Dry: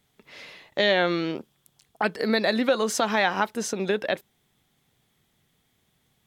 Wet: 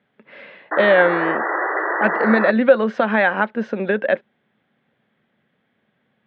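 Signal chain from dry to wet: cabinet simulation 160–2800 Hz, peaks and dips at 220 Hz +8 dB, 550 Hz +9 dB, 1.6 kHz +8 dB; painted sound noise, 0.71–2.51 s, 300–2000 Hz -24 dBFS; trim +2 dB

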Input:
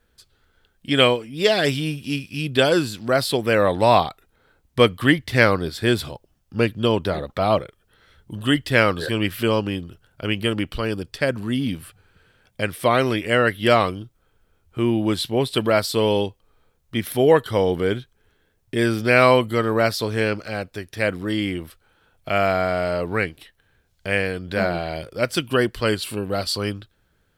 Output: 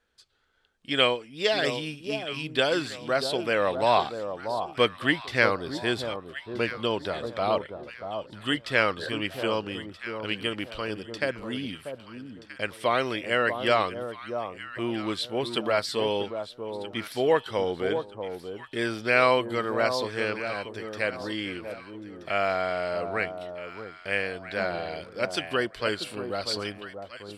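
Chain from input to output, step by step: low-pass 7.3 kHz 12 dB/octave; bass shelf 270 Hz -12 dB; echo whose repeats swap between lows and highs 639 ms, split 1.1 kHz, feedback 52%, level -7.5 dB; trim -4.5 dB

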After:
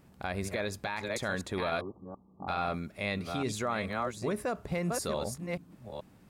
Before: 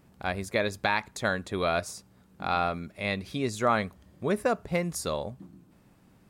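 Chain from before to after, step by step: chunks repeated in reverse 429 ms, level -8 dB; peak limiter -22.5 dBFS, peak gain reduction 10.5 dB; 1.81–2.48 s: rippled Chebyshev low-pass 1.2 kHz, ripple 6 dB

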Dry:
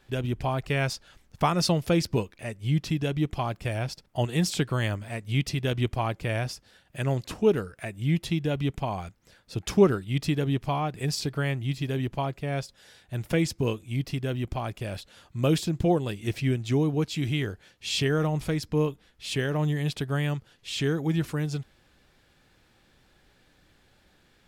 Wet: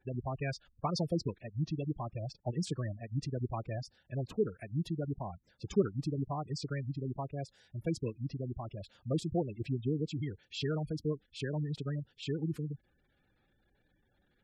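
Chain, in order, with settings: spectral gate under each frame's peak -15 dB strong; time stretch by phase-locked vocoder 0.59×; trim -8 dB

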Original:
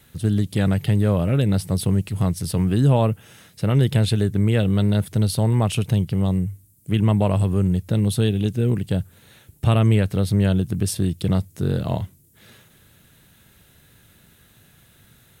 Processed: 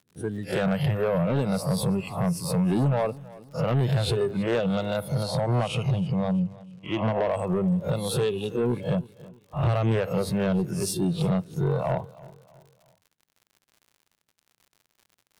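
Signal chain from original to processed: reverse spectral sustain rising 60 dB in 0.50 s; spectral noise reduction 17 dB; gate -43 dBFS, range -23 dB; high-pass 120 Hz 12 dB/octave; treble shelf 2 kHz -11 dB; compression 2:1, threshold -25 dBFS, peak gain reduction 7 dB; crackle 88 per s -51 dBFS; saturation -24 dBFS, distortion -13 dB; 5.23–7.29 s: distance through air 59 m; feedback delay 323 ms, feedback 42%, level -20.5 dB; trim +6 dB

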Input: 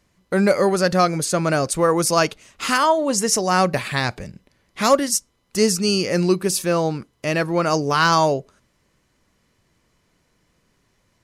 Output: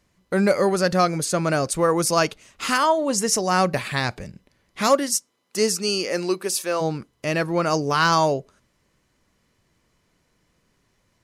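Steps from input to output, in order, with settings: 4.87–6.80 s: high-pass 180 Hz -> 450 Hz 12 dB/octave; trim -2 dB

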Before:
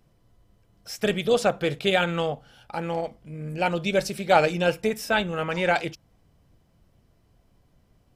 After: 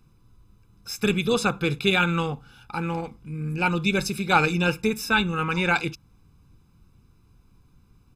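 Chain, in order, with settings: comb 0.8 ms, depth 90%

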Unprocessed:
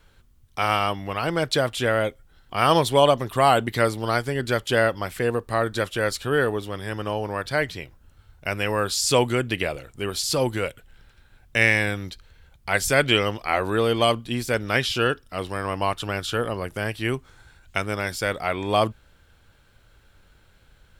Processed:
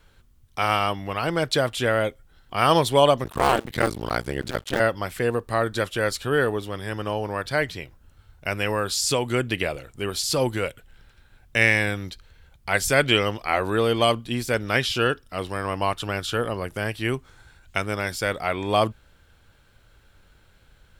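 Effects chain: 3.24–4.80 s: cycle switcher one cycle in 2, muted; 8.70–9.34 s: compression, threshold -19 dBFS, peak gain reduction 6 dB

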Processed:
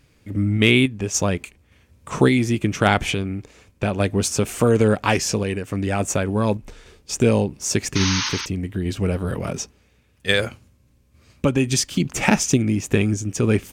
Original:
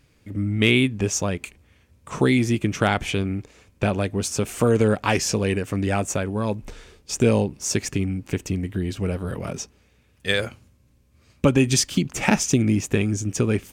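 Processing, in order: painted sound noise, 7.95–8.46 s, 830–6600 Hz -28 dBFS; random-step tremolo; trim +4.5 dB

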